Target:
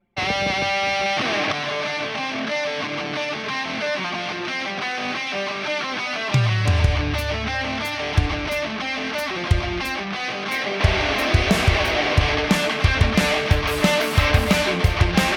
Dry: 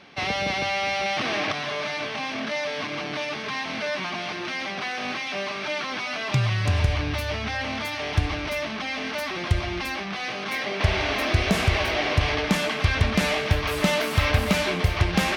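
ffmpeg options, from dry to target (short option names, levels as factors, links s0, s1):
-af "anlmdn=1.58,volume=1.58"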